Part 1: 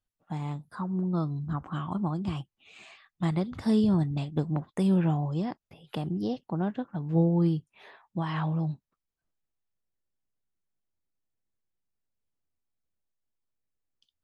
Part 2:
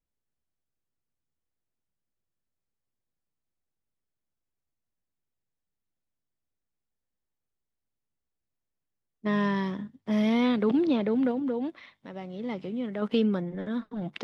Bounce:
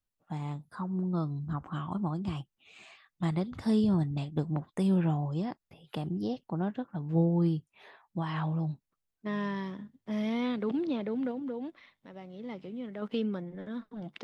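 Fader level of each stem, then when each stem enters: -2.5, -7.0 dB; 0.00, 0.00 s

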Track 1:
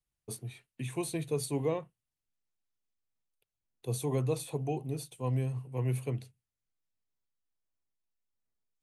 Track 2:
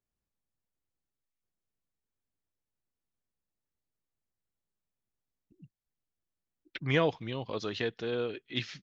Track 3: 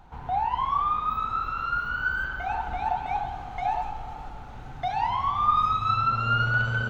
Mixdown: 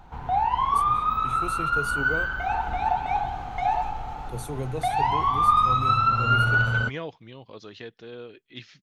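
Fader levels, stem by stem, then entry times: -1.0, -7.5, +3.0 dB; 0.45, 0.00, 0.00 s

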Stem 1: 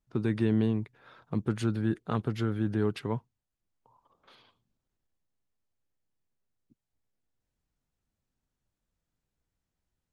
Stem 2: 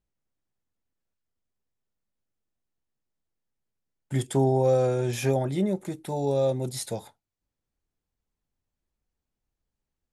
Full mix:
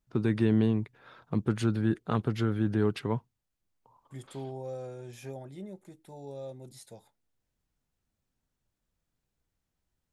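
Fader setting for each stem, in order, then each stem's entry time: +1.5, -17.0 dB; 0.00, 0.00 s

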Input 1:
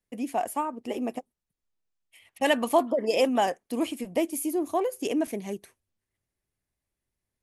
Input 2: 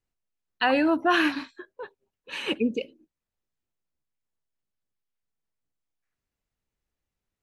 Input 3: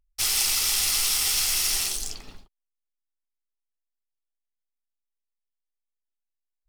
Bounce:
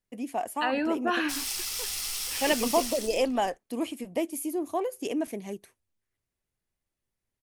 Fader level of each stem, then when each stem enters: -3.0, -6.0, -9.5 dB; 0.00, 0.00, 1.10 s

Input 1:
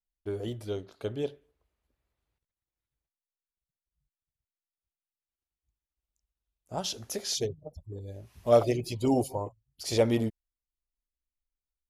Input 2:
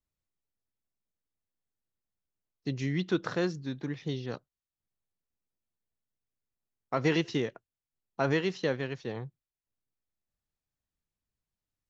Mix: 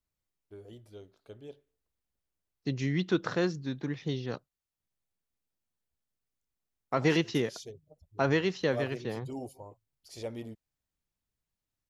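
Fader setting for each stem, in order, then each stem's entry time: -14.5, +1.0 dB; 0.25, 0.00 s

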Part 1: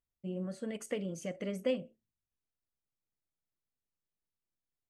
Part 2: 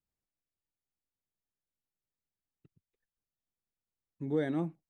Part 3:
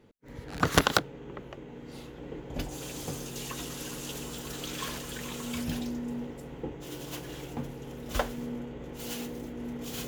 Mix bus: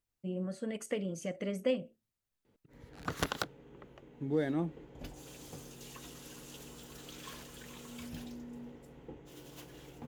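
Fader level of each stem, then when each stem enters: +1.0, -0.5, -11.5 dB; 0.00, 0.00, 2.45 s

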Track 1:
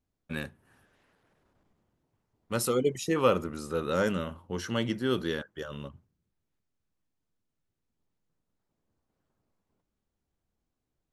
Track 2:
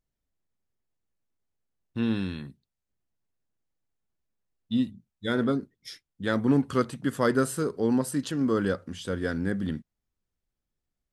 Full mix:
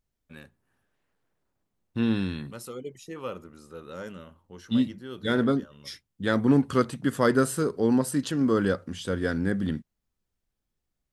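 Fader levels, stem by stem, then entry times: -11.5, +2.0 dB; 0.00, 0.00 s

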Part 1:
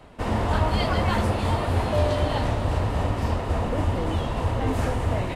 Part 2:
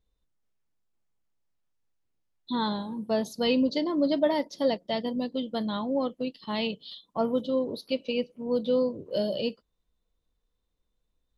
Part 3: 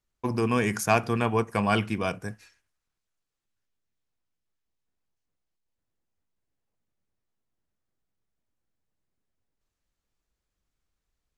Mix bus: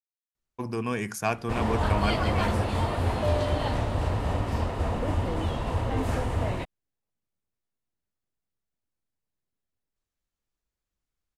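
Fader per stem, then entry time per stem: -3.0 dB, off, -5.0 dB; 1.30 s, off, 0.35 s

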